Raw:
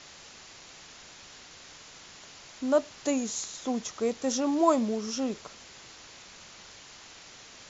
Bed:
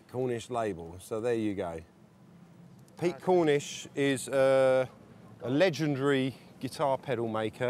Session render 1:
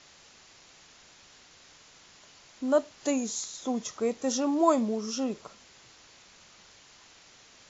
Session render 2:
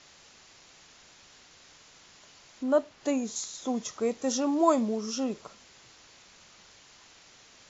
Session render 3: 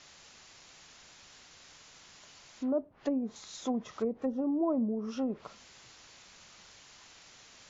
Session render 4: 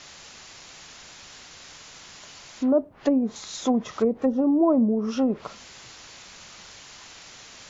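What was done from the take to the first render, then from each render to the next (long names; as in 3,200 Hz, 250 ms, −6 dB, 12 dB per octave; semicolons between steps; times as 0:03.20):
noise reduction from a noise print 6 dB
0:02.63–0:03.36: high-shelf EQ 5,200 Hz −10.5 dB
treble cut that deepens with the level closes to 430 Hz, closed at −24.5 dBFS; parametric band 370 Hz −2.5 dB 1.4 octaves
level +10 dB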